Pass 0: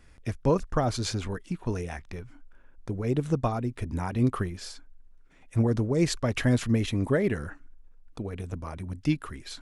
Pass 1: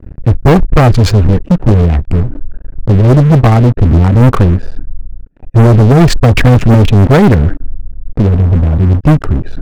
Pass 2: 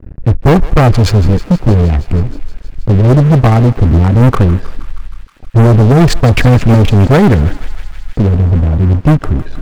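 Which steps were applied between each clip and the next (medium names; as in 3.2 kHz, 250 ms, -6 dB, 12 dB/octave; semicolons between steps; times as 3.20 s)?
local Wiener filter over 41 samples; tone controls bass +8 dB, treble -11 dB; waveshaping leveller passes 5; trim +6 dB
thinning echo 158 ms, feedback 82%, high-pass 790 Hz, level -15 dB; trim -1 dB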